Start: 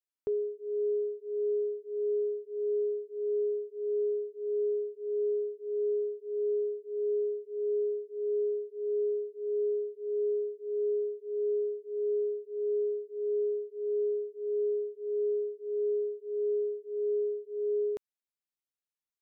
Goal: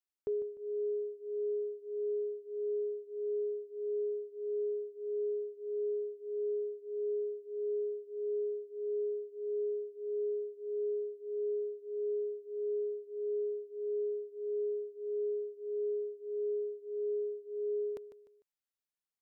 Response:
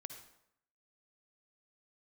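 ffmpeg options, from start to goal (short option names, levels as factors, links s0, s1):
-af "aecho=1:1:150|300|450:0.251|0.0854|0.029,volume=0.668"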